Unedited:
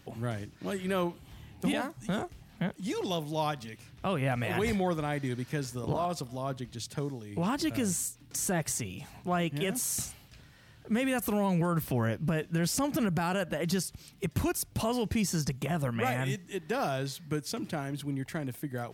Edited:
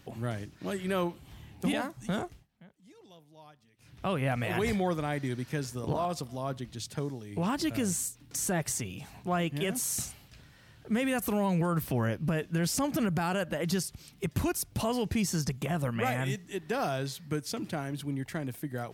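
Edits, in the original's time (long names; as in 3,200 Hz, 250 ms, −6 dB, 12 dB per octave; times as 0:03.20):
0:02.29–0:03.95: duck −23 dB, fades 0.18 s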